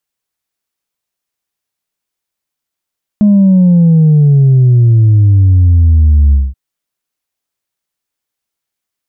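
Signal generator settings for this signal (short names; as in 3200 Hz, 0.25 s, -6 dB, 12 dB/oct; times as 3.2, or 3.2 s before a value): sub drop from 210 Hz, over 3.33 s, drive 1 dB, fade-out 0.21 s, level -4 dB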